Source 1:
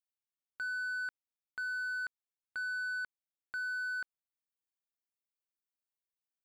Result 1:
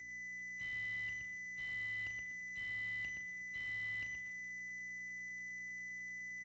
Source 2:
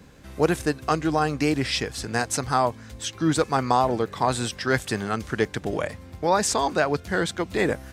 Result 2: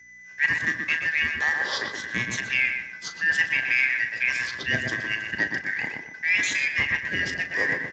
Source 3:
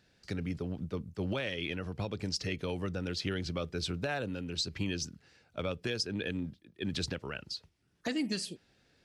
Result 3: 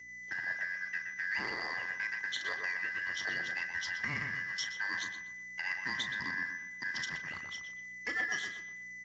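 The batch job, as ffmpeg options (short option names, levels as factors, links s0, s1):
-filter_complex "[0:a]afftfilt=real='real(if(lt(b,272),68*(eq(floor(b/68),0)*1+eq(floor(b/68),1)*0+eq(floor(b/68),2)*3+eq(floor(b/68),3)*2)+mod(b,68),b),0)':imag='imag(if(lt(b,272),68*(eq(floor(b/68),0)*1+eq(floor(b/68),1)*0+eq(floor(b/68),2)*3+eq(floor(b/68),3)*2)+mod(b,68),b),0)':win_size=2048:overlap=0.75,agate=range=0.141:threshold=0.0112:ratio=16:detection=peak,aeval=exprs='val(0)+0.00891*sin(2*PI*2000*n/s)':c=same,aeval=exprs='0.531*(cos(1*acos(clip(val(0)/0.531,-1,1)))-cos(1*PI/2))+0.00473*(cos(5*acos(clip(val(0)/0.531,-1,1)))-cos(5*PI/2))':c=same,aeval=exprs='sgn(val(0))*max(abs(val(0))-0.00376,0)':c=same,aeval=exprs='val(0)+0.00112*(sin(2*PI*60*n/s)+sin(2*PI*2*60*n/s)/2+sin(2*PI*3*60*n/s)/3+sin(2*PI*4*60*n/s)/4+sin(2*PI*5*60*n/s)/5)':c=same,asplit=2[s0][s1];[s1]adelay=37,volume=0.316[s2];[s0][s2]amix=inputs=2:normalize=0,asplit=2[s3][s4];[s4]adelay=122,lowpass=f=2000:p=1,volume=0.668,asplit=2[s5][s6];[s6]adelay=122,lowpass=f=2000:p=1,volume=0.41,asplit=2[s7][s8];[s8]adelay=122,lowpass=f=2000:p=1,volume=0.41,asplit=2[s9][s10];[s10]adelay=122,lowpass=f=2000:p=1,volume=0.41,asplit=2[s11][s12];[s12]adelay=122,lowpass=f=2000:p=1,volume=0.41[s13];[s3][s5][s7][s9][s11][s13]amix=inputs=6:normalize=0,volume=0.708" -ar 16000 -c:a libspeex -b:a 34k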